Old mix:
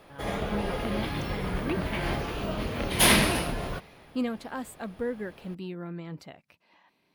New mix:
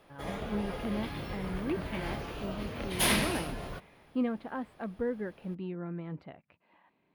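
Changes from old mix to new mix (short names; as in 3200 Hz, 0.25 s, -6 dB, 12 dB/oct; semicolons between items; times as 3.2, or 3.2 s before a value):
speech: add air absorption 470 m; background -7.0 dB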